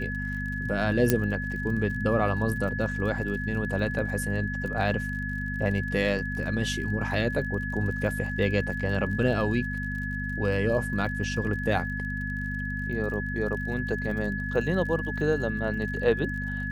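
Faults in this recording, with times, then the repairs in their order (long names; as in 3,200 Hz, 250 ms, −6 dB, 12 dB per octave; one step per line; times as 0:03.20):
surface crackle 48 per second −37 dBFS
mains hum 50 Hz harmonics 5 −33 dBFS
whistle 1,700 Hz −33 dBFS
0:01.10: click −6 dBFS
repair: click removal
notch filter 1,700 Hz, Q 30
hum removal 50 Hz, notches 5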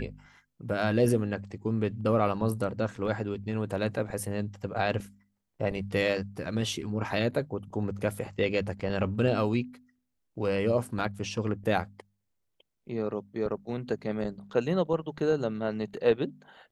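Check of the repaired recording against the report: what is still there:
0:01.10: click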